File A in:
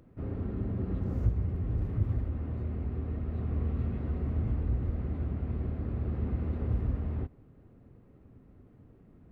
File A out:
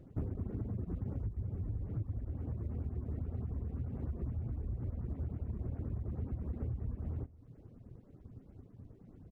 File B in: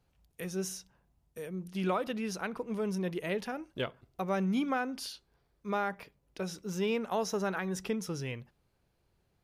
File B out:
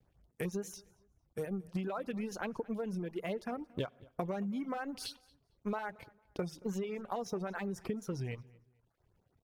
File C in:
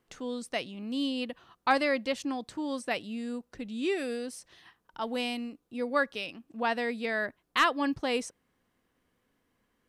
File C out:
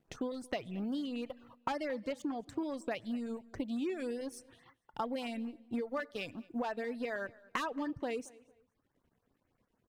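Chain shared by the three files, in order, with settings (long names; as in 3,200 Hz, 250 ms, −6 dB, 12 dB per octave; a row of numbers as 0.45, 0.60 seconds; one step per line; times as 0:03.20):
mu-law and A-law mismatch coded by A
high-shelf EQ 2,500 Hz −7.5 dB
tape wow and flutter 110 cents
parametric band 110 Hz +4 dB 0.77 octaves
four-comb reverb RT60 0.8 s, combs from 26 ms, DRR 18.5 dB
soft clipping −23 dBFS
auto-filter notch saw up 9.5 Hz 880–5,000 Hz
downward compressor 20 to 1, threshold −43 dBFS
reverb reduction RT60 0.79 s
on a send: repeating echo 226 ms, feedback 29%, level −23 dB
on the sum: one half of a high-frequency compander decoder only
level +10.5 dB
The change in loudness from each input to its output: −7.0, −4.5, −7.0 LU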